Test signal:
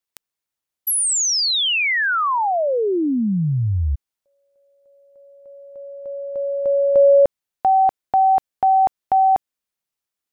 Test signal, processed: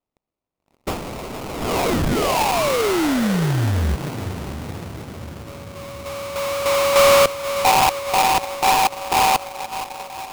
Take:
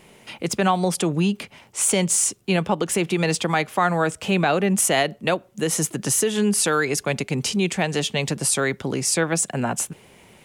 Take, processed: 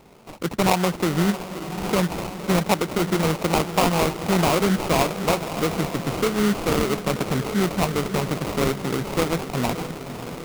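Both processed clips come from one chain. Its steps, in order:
flat-topped bell 6,000 Hz −12 dB
feedback delay with all-pass diffusion 564 ms, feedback 65%, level −10.5 dB
sample-rate reduction 1,700 Hz, jitter 20%

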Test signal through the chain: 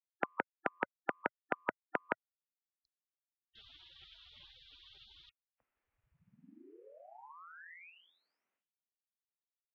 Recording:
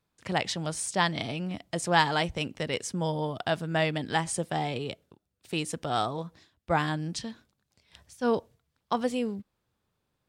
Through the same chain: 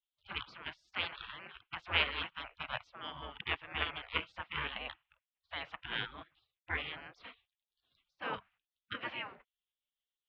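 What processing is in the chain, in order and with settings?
single-sideband voice off tune −86 Hz 310–2,600 Hz
gate on every frequency bin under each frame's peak −25 dB weak
level +11.5 dB

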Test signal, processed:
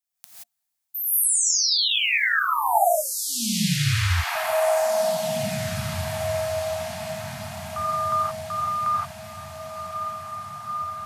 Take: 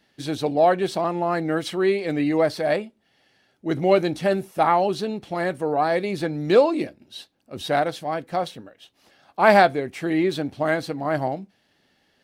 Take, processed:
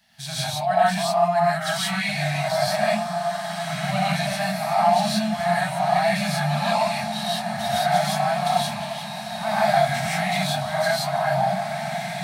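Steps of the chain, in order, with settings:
Chebyshev band-stop filter 230–620 Hz, order 5
high-shelf EQ 4,600 Hz +8 dB
reversed playback
downward compressor 6 to 1, threshold −29 dBFS
reversed playback
hollow resonant body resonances 290/700 Hz, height 8 dB, ringing for 90 ms
on a send: feedback delay with all-pass diffusion 1,954 ms, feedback 47%, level −6 dB
on the sum: reverb whose tail is shaped and stops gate 200 ms rising, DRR −8 dB

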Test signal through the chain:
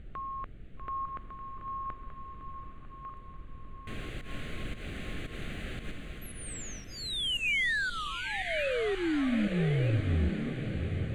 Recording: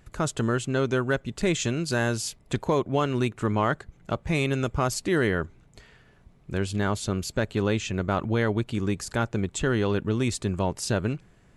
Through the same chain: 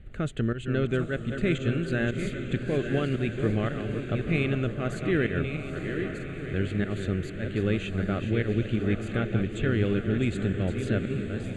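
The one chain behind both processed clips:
feedback delay that plays each chunk backwards 619 ms, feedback 52%, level −8 dB
fake sidechain pumping 114 BPM, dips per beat 1, −19 dB, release 141 ms
background noise brown −45 dBFS
high-frequency loss of the air 100 metres
phaser with its sweep stopped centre 2,300 Hz, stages 4
feedback delay with all-pass diffusion 842 ms, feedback 58%, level −9 dB

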